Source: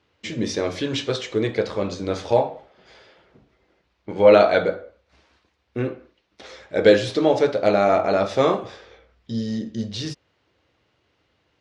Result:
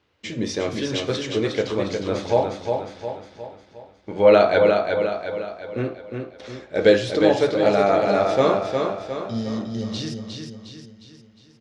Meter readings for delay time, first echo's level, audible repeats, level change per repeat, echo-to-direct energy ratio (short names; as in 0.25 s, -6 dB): 0.358 s, -5.0 dB, 5, -6.0 dB, -4.0 dB